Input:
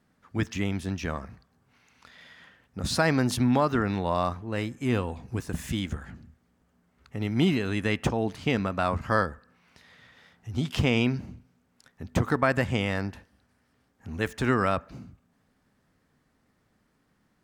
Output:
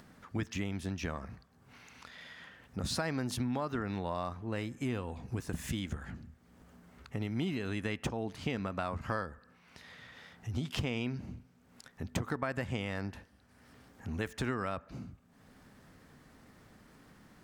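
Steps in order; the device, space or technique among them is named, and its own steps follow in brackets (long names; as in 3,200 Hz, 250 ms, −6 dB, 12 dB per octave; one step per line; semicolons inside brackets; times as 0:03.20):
upward and downward compression (upward compression, threshold −47 dBFS; downward compressor 4 to 1, threshold −33 dBFS, peak gain reduction 13 dB)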